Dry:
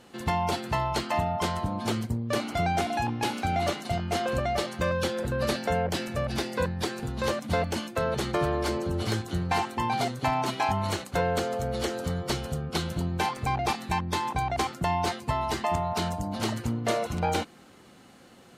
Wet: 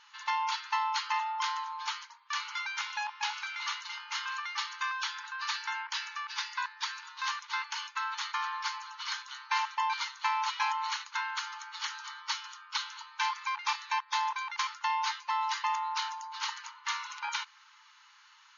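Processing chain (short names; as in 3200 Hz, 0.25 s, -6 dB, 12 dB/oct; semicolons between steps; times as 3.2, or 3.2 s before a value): brick-wall FIR band-pass 840–6900 Hz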